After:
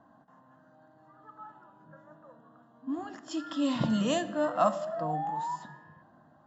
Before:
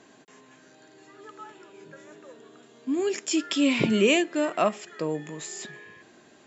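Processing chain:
sound drawn into the spectrogram rise, 0:04.47–0:05.56, 480–1,000 Hz −34 dBFS
phaser with its sweep stopped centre 970 Hz, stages 4
low-pass that shuts in the quiet parts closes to 1,200 Hz, open at −19.5 dBFS
echo ahead of the sound 48 ms −18 dB
on a send at −12 dB: convolution reverb RT60 1.1 s, pre-delay 3 ms
on the sum: level +1 dB

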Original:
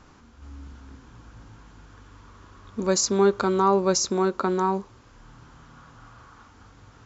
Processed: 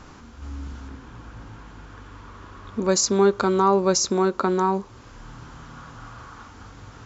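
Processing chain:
0:00.88–0:02.89: bass and treble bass −2 dB, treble −6 dB
in parallel at +3 dB: downward compressor, threshold −35 dBFS, peak gain reduction 18.5 dB

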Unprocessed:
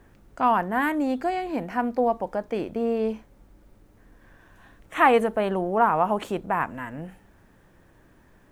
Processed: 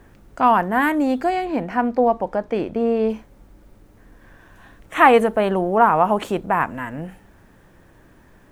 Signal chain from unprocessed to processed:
0:01.45–0:03.10: high-shelf EQ 7,400 Hz −11.5 dB
level +5.5 dB

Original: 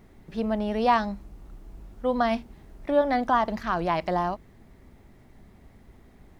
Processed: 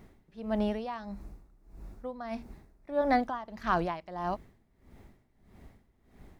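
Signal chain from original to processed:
0:01.03–0:03.20: parametric band 3,100 Hz −9.5 dB 0.3 octaves
tremolo with a sine in dB 1.6 Hz, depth 18 dB

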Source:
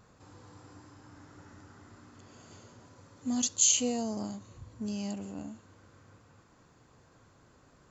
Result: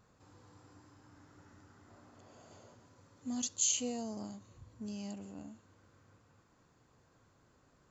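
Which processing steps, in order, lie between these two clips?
0:01.88–0:02.75: parametric band 650 Hz +9.5 dB 0.91 octaves
level −7 dB

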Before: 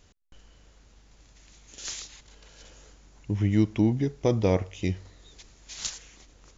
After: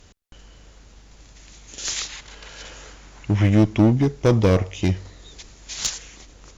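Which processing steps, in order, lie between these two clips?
0:01.96–0:03.50: parametric band 1,700 Hz +7.5 dB 2.7 octaves
asymmetric clip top −23 dBFS
level +8.5 dB

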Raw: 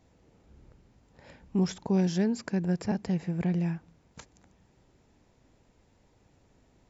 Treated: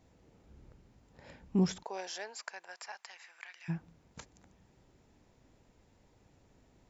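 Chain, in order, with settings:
0:01.82–0:03.68: high-pass filter 520 Hz → 1,400 Hz 24 dB per octave
level −1.5 dB

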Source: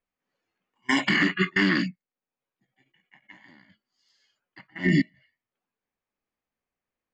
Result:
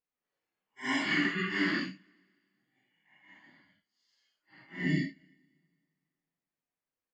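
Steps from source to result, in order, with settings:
random phases in long frames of 200 ms
low-shelf EQ 140 Hz −6 dB
coupled-rooms reverb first 0.23 s, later 2.2 s, from −20 dB, DRR 18 dB
level −6.5 dB

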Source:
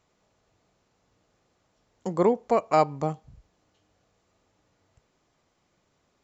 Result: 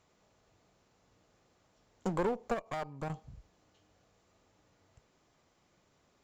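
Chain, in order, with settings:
downward compressor 8 to 1, threshold −24 dBFS, peak gain reduction 10 dB
asymmetric clip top −34 dBFS
0:02.54–0:03.10: output level in coarse steps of 12 dB

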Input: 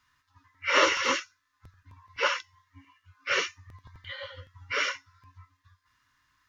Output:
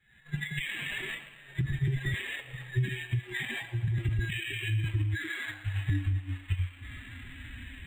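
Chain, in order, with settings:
gliding playback speed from 108% → 57%
camcorder AGC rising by 71 dB per second
flat-topped bell 740 Hz −15.5 dB 1.1 octaves
brickwall limiter −19.5 dBFS, peak gain reduction 10 dB
downward compressor 16 to 1, threshold −30 dBFS, peak gain reduction 8.5 dB
phase-vocoder pitch shift with formants kept +7.5 semitones
linear-phase brick-wall band-stop 400–1,600 Hz
high-frequency loss of the air 270 metres
on a send: delay with a high-pass on its return 113 ms, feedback 57%, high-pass 2,800 Hz, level −8.5 dB
on the sum: linearly interpolated sample-rate reduction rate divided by 8×
level +6.5 dB

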